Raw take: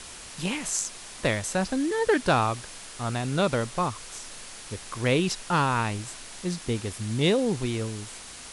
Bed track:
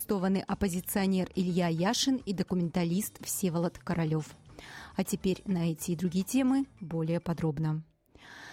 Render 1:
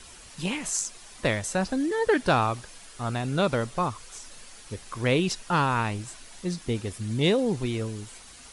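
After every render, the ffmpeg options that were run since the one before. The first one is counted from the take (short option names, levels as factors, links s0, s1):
-af "afftdn=nr=8:nf=-43"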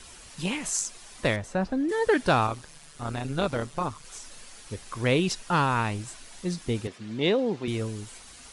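-filter_complex "[0:a]asettb=1/sr,asplit=3[s0][s1][s2];[s0]atrim=end=1.364[s3];[s1]atrim=start=1.36:end=1.89,asetpts=PTS-STARTPTS,afade=t=in:d=0.004:c=qsin,afade=t=out:st=0.526:d=0.004:c=qsin,lowpass=f=1400:p=1[s4];[s2]atrim=start=1.886[s5];[s3][s4]acrossfade=d=0.004:c1=hsin:c2=qsin[s6];[s6][s5]acrossfade=d=0.004:c1=qsin:c2=hsin,asettb=1/sr,asplit=3[s7][s8][s9];[s7]atrim=end=2.474[s10];[s8]atrim=start=2.47:end=4.05,asetpts=PTS-STARTPTS,afade=t=in:d=0.004:c=qsin,afade=t=out:st=1.576:d=0.004:c=qsin,tremolo=f=150:d=0.667[s11];[s9]atrim=start=4.046[s12];[s10][s11]acrossfade=d=0.004:c1=hsin:c2=qsin[s13];[s13][s12]acrossfade=d=0.004:c1=qsin:c2=hsin,asettb=1/sr,asplit=3[s14][s15][s16];[s14]atrim=end=6.874[s17];[s15]atrim=start=6.87:end=7.68,asetpts=PTS-STARTPTS,afade=t=in:d=0.004:c=qsin,afade=t=out:st=0.806:d=0.004:c=qsin,highpass=220,lowpass=4000[s18];[s16]atrim=start=7.676[s19];[s17][s18]acrossfade=d=0.004:c1=hsin:c2=qsin[s20];[s20][s19]acrossfade=d=0.004:c1=qsin:c2=hsin"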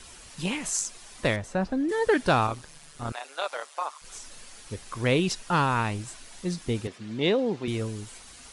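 -filter_complex "[0:a]asettb=1/sr,asplit=3[s0][s1][s2];[s0]atrim=end=3.124[s3];[s1]atrim=start=3.12:end=4.02,asetpts=PTS-STARTPTS,afade=t=in:d=0.004:c=qsin,afade=t=out:st=0.896:d=0.004:c=qsin,highpass=f=610:w=0.5412,highpass=f=610:w=1.3066[s4];[s2]atrim=start=4.016[s5];[s3][s4]acrossfade=d=0.004:c1=hsin:c2=qsin[s6];[s6][s5]acrossfade=d=0.004:c1=qsin:c2=hsin"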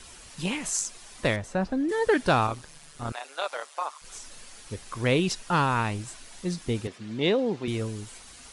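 -af anull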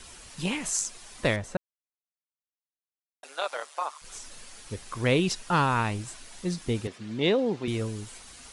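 -filter_complex "[0:a]asplit=3[s0][s1][s2];[s0]atrim=end=1.57,asetpts=PTS-STARTPTS,afade=t=out:st=1.566:d=0.004:c=hsin[s3];[s1]atrim=start=1.57:end=3.23,asetpts=PTS-STARTPTS,volume=0[s4];[s2]atrim=start=3.23,asetpts=PTS-STARTPTS,afade=t=in:d=0.004:c=hsin[s5];[s3][s4][s5]concat=n=3:v=0:a=1"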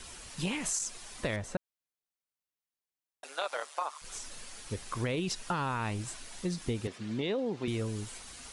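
-af "alimiter=limit=0.126:level=0:latency=1:release=15,acompressor=threshold=0.0355:ratio=6"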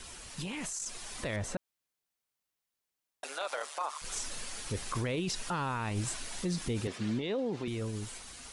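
-af "alimiter=level_in=2.11:limit=0.0631:level=0:latency=1:release=25,volume=0.473,dynaudnorm=f=120:g=17:m=1.88"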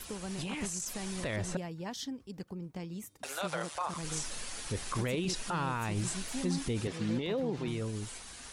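-filter_complex "[1:a]volume=0.251[s0];[0:a][s0]amix=inputs=2:normalize=0"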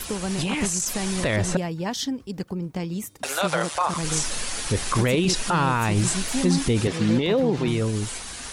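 -af "volume=3.98"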